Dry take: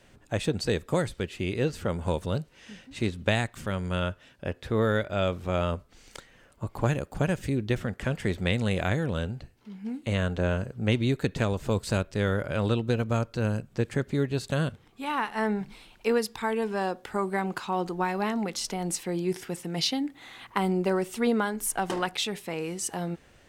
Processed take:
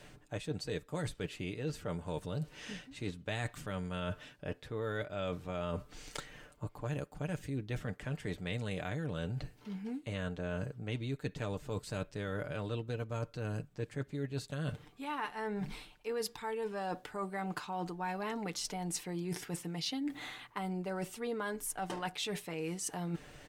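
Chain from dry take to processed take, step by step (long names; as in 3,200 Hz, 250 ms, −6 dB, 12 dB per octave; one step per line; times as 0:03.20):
comb filter 6.7 ms, depth 48%
reversed playback
downward compressor 6 to 1, threshold −39 dBFS, peak gain reduction 19.5 dB
reversed playback
level +3 dB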